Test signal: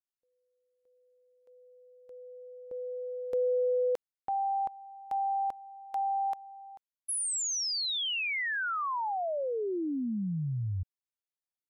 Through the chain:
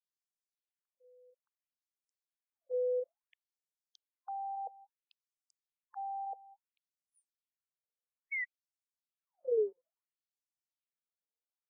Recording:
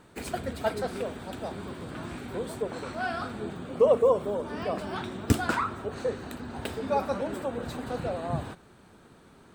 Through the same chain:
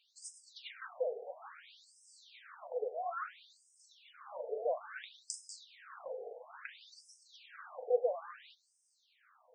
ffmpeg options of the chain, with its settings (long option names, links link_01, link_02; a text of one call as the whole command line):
ffmpeg -i in.wav -af "superequalizer=7b=2.82:9b=0.501,afftfilt=real='re*between(b*sr/1024,580*pow(7100/580,0.5+0.5*sin(2*PI*0.59*pts/sr))/1.41,580*pow(7100/580,0.5+0.5*sin(2*PI*0.59*pts/sr))*1.41)':imag='im*between(b*sr/1024,580*pow(7100/580,0.5+0.5*sin(2*PI*0.59*pts/sr))/1.41,580*pow(7100/580,0.5+0.5*sin(2*PI*0.59*pts/sr))*1.41)':win_size=1024:overlap=0.75,volume=-3dB" out.wav